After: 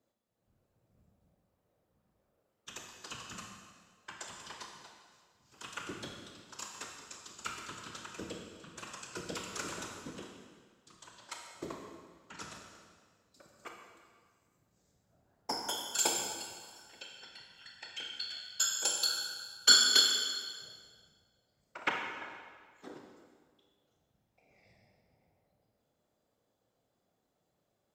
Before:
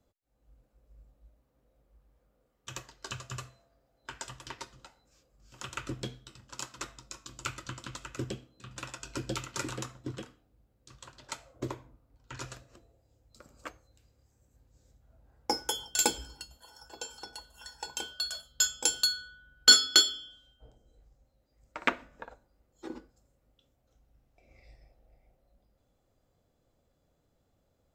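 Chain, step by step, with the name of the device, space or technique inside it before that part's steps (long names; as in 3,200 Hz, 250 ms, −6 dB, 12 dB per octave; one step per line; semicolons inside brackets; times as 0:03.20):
0:16.81–0:18.46: drawn EQ curve 170 Hz 0 dB, 1,200 Hz −14 dB, 1,900 Hz +11 dB, 10,000 Hz −18 dB
whispering ghost (random phases in short frames; high-pass filter 260 Hz 6 dB per octave; convolution reverb RT60 1.7 s, pre-delay 26 ms, DRR 1 dB)
level −4.5 dB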